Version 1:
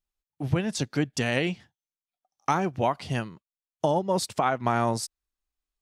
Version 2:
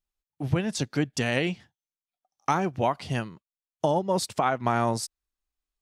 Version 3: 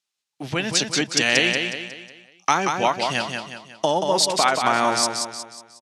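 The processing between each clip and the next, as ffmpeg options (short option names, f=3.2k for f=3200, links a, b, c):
-af anull
-af "crystalizer=i=8.5:c=0,highpass=200,lowpass=4.9k,aecho=1:1:182|364|546|728|910:0.562|0.242|0.104|0.0447|0.0192,volume=1dB"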